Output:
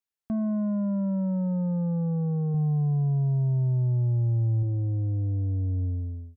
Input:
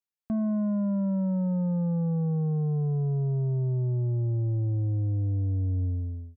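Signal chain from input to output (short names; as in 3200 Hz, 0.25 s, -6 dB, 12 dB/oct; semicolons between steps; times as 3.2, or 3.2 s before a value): 2.54–4.63 comb 1.2 ms, depth 54%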